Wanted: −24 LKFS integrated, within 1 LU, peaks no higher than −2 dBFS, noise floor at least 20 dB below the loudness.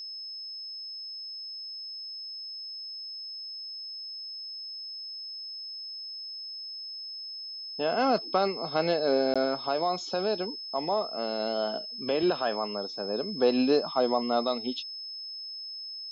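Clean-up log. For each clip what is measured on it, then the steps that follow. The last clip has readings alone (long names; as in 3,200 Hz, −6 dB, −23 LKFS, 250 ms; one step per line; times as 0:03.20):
number of dropouts 1; longest dropout 16 ms; interfering tone 5,200 Hz; level of the tone −37 dBFS; integrated loudness −31.0 LKFS; sample peak −13.0 dBFS; target loudness −24.0 LKFS
→ repair the gap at 0:09.34, 16 ms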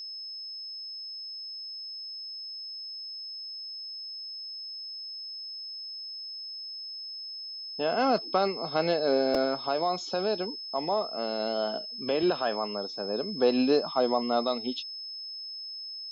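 number of dropouts 0; interfering tone 5,200 Hz; level of the tone −37 dBFS
→ notch filter 5,200 Hz, Q 30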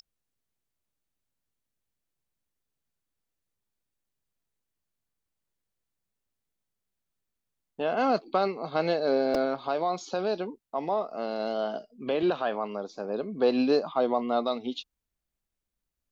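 interfering tone none found; integrated loudness −28.5 LKFS; sample peak −13.0 dBFS; target loudness −24.0 LKFS
→ level +4.5 dB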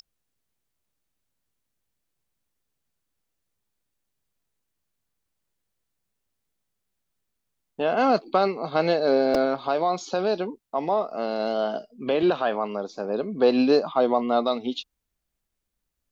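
integrated loudness −24.0 LKFS; sample peak −8.5 dBFS; background noise floor −81 dBFS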